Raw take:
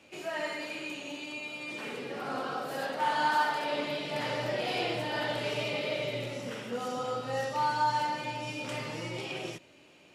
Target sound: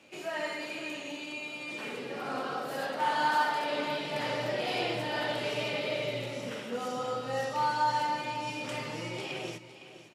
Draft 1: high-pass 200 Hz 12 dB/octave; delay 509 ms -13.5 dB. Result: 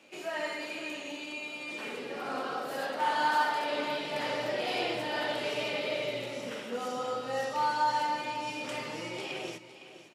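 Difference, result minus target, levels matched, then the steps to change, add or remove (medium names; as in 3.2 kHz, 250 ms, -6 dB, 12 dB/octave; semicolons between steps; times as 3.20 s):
125 Hz band -6.5 dB
change: high-pass 98 Hz 12 dB/octave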